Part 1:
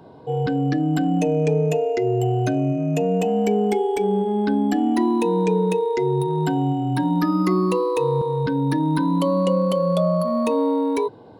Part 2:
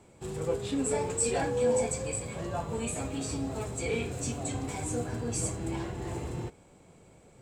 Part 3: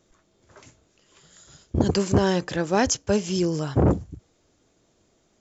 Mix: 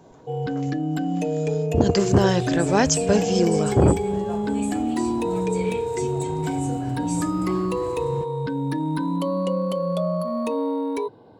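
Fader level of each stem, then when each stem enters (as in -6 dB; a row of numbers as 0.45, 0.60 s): -4.5, -1.5, +2.0 dB; 0.00, 1.75, 0.00 s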